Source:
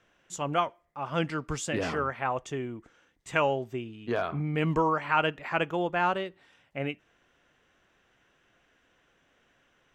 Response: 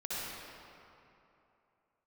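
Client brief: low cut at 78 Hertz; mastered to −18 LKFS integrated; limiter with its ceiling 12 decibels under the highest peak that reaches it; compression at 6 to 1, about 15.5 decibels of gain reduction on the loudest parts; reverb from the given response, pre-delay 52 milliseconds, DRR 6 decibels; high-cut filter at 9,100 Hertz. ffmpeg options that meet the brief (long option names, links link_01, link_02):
-filter_complex "[0:a]highpass=78,lowpass=9100,acompressor=threshold=-38dB:ratio=6,alimiter=level_in=10.5dB:limit=-24dB:level=0:latency=1,volume=-10.5dB,asplit=2[link_01][link_02];[1:a]atrim=start_sample=2205,adelay=52[link_03];[link_02][link_03]afir=irnorm=-1:irlink=0,volume=-10dB[link_04];[link_01][link_04]amix=inputs=2:normalize=0,volume=26.5dB"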